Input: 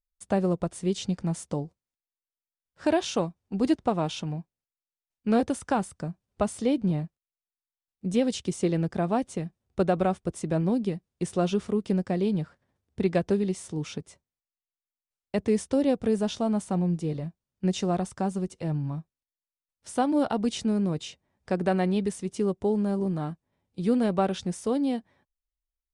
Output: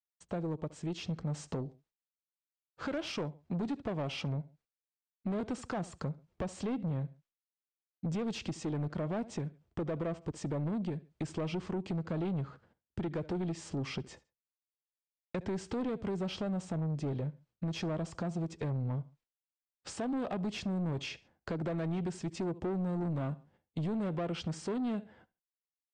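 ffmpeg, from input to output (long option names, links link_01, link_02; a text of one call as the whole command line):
ffmpeg -i in.wav -filter_complex "[0:a]acrossover=split=700|740[link_01][link_02][link_03];[link_03]volume=32dB,asoftclip=hard,volume=-32dB[link_04];[link_01][link_02][link_04]amix=inputs=3:normalize=0,dynaudnorm=framelen=870:gausssize=3:maxgain=16dB,alimiter=limit=-11.5dB:level=0:latency=1:release=304,lowshelf=frequency=110:gain=-5.5,agate=range=-33dB:threshold=-50dB:ratio=3:detection=peak,asplit=2[link_05][link_06];[link_06]aecho=0:1:72|144:0.0708|0.0184[link_07];[link_05][link_07]amix=inputs=2:normalize=0,asoftclip=type=tanh:threshold=-20.5dB,acompressor=threshold=-33dB:ratio=2,asetrate=39289,aresample=44100,atempo=1.12246,lowpass=8600,aemphasis=mode=reproduction:type=50kf,volume=-4dB" out.wav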